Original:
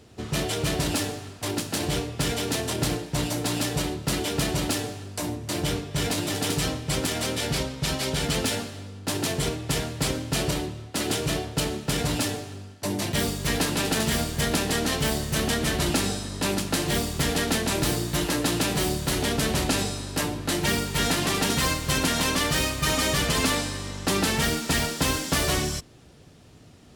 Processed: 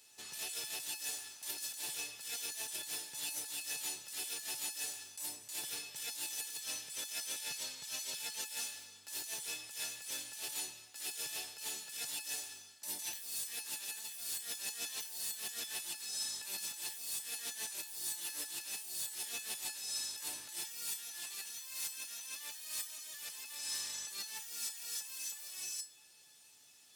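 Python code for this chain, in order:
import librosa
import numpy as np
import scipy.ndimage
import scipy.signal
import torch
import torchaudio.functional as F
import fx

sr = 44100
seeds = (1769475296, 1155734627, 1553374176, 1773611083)

y = np.diff(x, prepend=0.0)
y = fx.over_compress(y, sr, threshold_db=-40.0, ratio=-1.0)
y = fx.comb_fb(y, sr, f0_hz=860.0, decay_s=0.26, harmonics='all', damping=0.0, mix_pct=90)
y = y * 10.0 ** (12.0 / 20.0)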